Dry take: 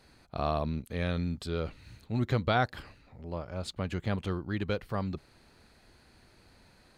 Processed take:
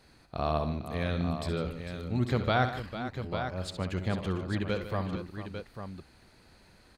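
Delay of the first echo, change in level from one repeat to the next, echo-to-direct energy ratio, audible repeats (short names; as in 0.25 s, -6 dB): 65 ms, no steady repeat, -4.5 dB, 4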